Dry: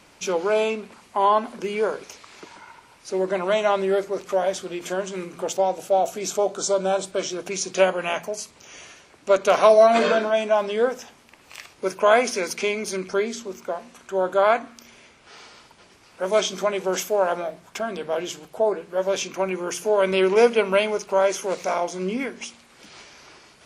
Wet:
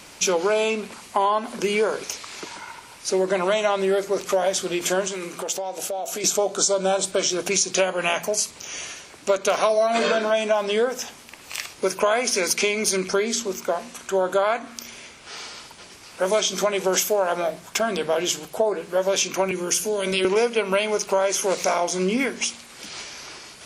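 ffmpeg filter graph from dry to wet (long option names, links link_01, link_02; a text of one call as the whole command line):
ffmpeg -i in.wav -filter_complex "[0:a]asettb=1/sr,asplit=3[link_01][link_02][link_03];[link_01]atrim=end=5.074[link_04];[link_02]atrim=start=5.07:end=6.24,asetpts=PTS-STARTPTS,afade=type=in:duration=0.004:curve=qsin,afade=type=out:start_time=1.166:duration=0.004:curve=qsin,highpass=frequency=290:poles=1,acompressor=threshold=-32dB:ratio=6:attack=3.2:release=140:knee=1:detection=peak[link_05];[link_03]atrim=start=6.236[link_06];[link_04][link_05]acrossfade=duration=0.004:curve1=hsin:curve2=qsin[link_07];[link_07][link_06]acrossfade=duration=0.004:curve1=qsin:curve2=hsin,asettb=1/sr,asplit=3[link_08][link_09][link_10];[link_08]atrim=end=19.514[link_11];[link_09]atrim=start=19.51:end=20.25,asetpts=PTS-STARTPTS,afade=type=in:duration=0.004:curve=qsin,afade=type=out:start_time=0.736:duration=0.004:curve=qsin,bandreject=frequency=63.72:width_type=h:width=4,bandreject=frequency=127.44:width_type=h:width=4,bandreject=frequency=191.16:width_type=h:width=4,bandreject=frequency=254.88:width_type=h:width=4,bandreject=frequency=318.6:width_type=h:width=4,bandreject=frequency=382.32:width_type=h:width=4,bandreject=frequency=446.04:width_type=h:width=4,bandreject=frequency=509.76:width_type=h:width=4,bandreject=frequency=573.48:width_type=h:width=4,bandreject=frequency=637.2:width_type=h:width=4,bandreject=frequency=700.92:width_type=h:width=4,bandreject=frequency=764.64:width_type=h:width=4,bandreject=frequency=828.36:width_type=h:width=4,bandreject=frequency=892.08:width_type=h:width=4,bandreject=frequency=955.8:width_type=h:width=4,bandreject=frequency=1019.52:width_type=h:width=4,bandreject=frequency=1083.24:width_type=h:width=4,bandreject=frequency=1146.96:width_type=h:width=4,bandreject=frequency=1210.68:width_type=h:width=4,bandreject=frequency=1274.4:width_type=h:width=4,bandreject=frequency=1338.12:width_type=h:width=4,bandreject=frequency=1401.84:width_type=h:width=4,bandreject=frequency=1465.56:width_type=h:width=4,bandreject=frequency=1529.28:width_type=h:width=4,bandreject=frequency=1593:width_type=h:width=4,bandreject=frequency=1656.72:width_type=h:width=4,bandreject=frequency=1720.44:width_type=h:width=4,acrossover=split=370|3000[link_12][link_13][link_14];[link_13]acompressor=threshold=-30dB:ratio=2.5:attack=3.2:release=140:knee=2.83:detection=peak[link_15];[link_12][link_15][link_14]amix=inputs=3:normalize=0,equalizer=frequency=860:width=0.56:gain=-7.5[link_16];[link_10]atrim=start=20.246[link_17];[link_11][link_16]acrossfade=duration=0.004:curve1=hsin:curve2=qsin[link_18];[link_18][link_17]acrossfade=duration=0.004:curve1=qsin:curve2=hsin,highshelf=frequency=3300:gain=8.5,acompressor=threshold=-23dB:ratio=6,volume=5.5dB" out.wav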